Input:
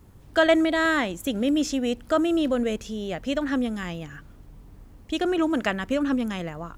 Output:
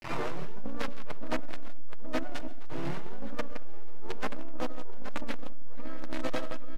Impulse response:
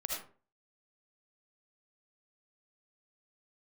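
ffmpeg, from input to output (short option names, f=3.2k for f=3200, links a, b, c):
-filter_complex "[0:a]areverse,bandpass=f=450:t=q:w=0.68:csg=0,acrusher=bits=4:dc=4:mix=0:aa=0.000001,bandreject=f=50:t=h:w=6,bandreject=f=100:t=h:w=6,bandreject=f=150:t=h:w=6,bandreject=f=200:t=h:w=6,bandreject=f=250:t=h:w=6,bandreject=f=300:t=h:w=6,aecho=1:1:6.7:0.94,aecho=1:1:99|164|822:0.15|0.335|0.299,asplit=2[a][b];[1:a]atrim=start_sample=2205,asetrate=26019,aresample=44100[c];[b][c]afir=irnorm=-1:irlink=0,volume=-19dB[d];[a][d]amix=inputs=2:normalize=0,acompressor=threshold=-32dB:ratio=6,asplit=4[e][f][g][h];[f]asetrate=35002,aresample=44100,atempo=1.25992,volume=0dB[i];[g]asetrate=37084,aresample=44100,atempo=1.18921,volume=-7dB[j];[h]asetrate=88200,aresample=44100,atempo=0.5,volume=-3dB[k];[e][i][j][k]amix=inputs=4:normalize=0,asoftclip=type=tanh:threshold=-27dB,aemphasis=mode=reproduction:type=75fm,volume=6dB"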